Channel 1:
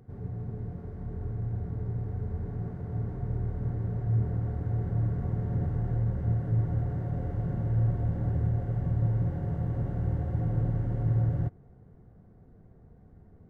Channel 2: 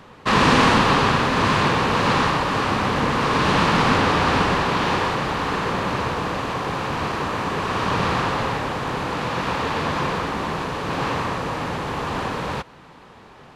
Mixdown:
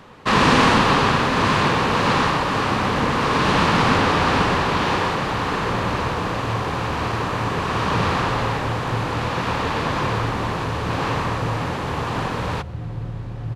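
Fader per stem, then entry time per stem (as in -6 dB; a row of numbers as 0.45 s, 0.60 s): -1.5 dB, +0.5 dB; 2.40 s, 0.00 s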